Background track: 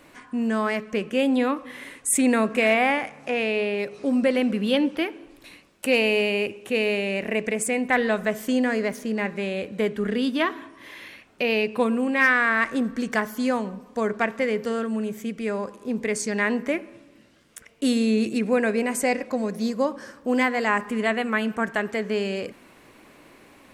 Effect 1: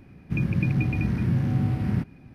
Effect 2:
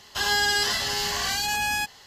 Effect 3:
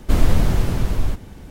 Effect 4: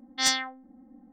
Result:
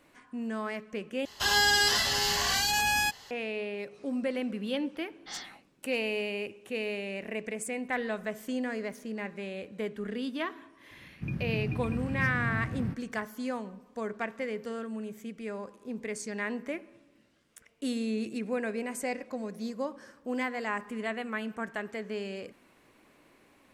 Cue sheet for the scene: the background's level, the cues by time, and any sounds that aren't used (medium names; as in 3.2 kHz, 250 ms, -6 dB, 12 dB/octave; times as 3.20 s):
background track -10.5 dB
1.25 s: replace with 2 -1 dB
5.08 s: add 4 -16.5 dB + whisper effect
10.91 s: add 1 -9.5 dB
not used: 3